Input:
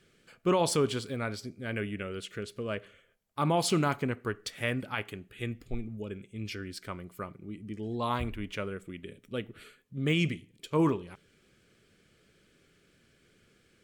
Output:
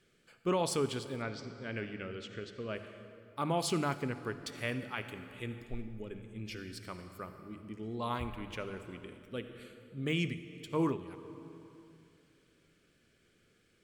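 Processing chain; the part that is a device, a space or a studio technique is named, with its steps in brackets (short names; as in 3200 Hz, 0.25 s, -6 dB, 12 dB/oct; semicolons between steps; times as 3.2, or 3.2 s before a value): compressed reverb return (on a send at -7.5 dB: reverb RT60 2.3 s, pre-delay 53 ms + compressor, threshold -31 dBFS, peak gain reduction 10.5 dB); 1.22–2.75 on the sum: LPF 6400 Hz 24 dB/oct; notches 50/100/150/200 Hz; gain -5 dB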